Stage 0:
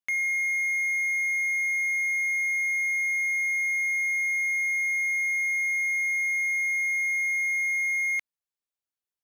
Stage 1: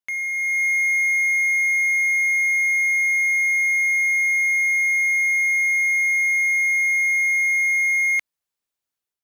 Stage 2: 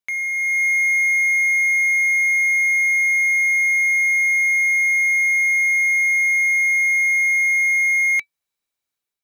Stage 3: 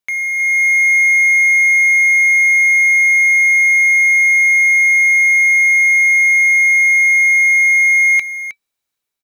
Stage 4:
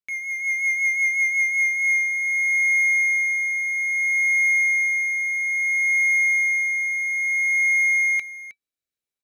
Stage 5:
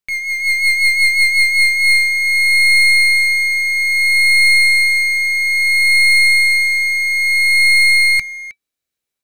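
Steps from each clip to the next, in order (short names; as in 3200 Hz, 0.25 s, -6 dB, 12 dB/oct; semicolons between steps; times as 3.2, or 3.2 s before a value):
AGC gain up to 7 dB
small resonant body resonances 2300/3900 Hz, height 14 dB, ringing for 90 ms; gain +1.5 dB
echo 0.314 s -11.5 dB; gain +4.5 dB
rotary speaker horn 5.5 Hz, later 0.6 Hz, at 1.35; gain -7.5 dB
tracing distortion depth 0.065 ms; gain +8 dB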